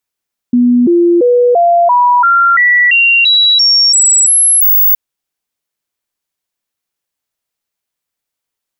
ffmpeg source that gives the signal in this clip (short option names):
-f lavfi -i "aevalsrc='0.562*clip(min(mod(t,0.34),0.34-mod(t,0.34))/0.005,0,1)*sin(2*PI*244*pow(2,floor(t/0.34)/2)*mod(t,0.34))':d=4.42:s=44100"